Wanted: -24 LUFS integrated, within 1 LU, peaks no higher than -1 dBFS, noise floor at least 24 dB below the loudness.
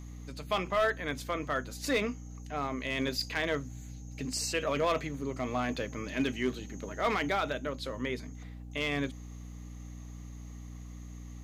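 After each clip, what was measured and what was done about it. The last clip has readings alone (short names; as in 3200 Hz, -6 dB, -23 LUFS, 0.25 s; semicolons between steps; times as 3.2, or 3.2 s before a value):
clipped 0.6%; flat tops at -22.0 dBFS; hum 60 Hz; harmonics up to 300 Hz; hum level -42 dBFS; loudness -33.0 LUFS; peak -22.0 dBFS; loudness target -24.0 LUFS
-> clip repair -22 dBFS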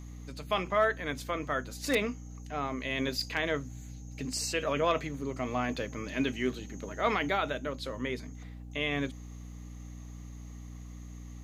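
clipped 0.0%; hum 60 Hz; harmonics up to 300 Hz; hum level -42 dBFS
-> notches 60/120/180/240/300 Hz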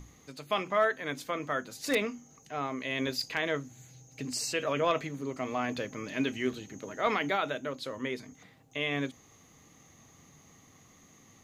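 hum none; loudness -32.5 LUFS; peak -13.0 dBFS; loudness target -24.0 LUFS
-> gain +8.5 dB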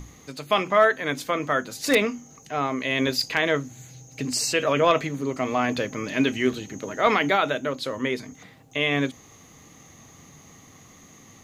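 loudness -24.0 LUFS; peak -4.5 dBFS; noise floor -51 dBFS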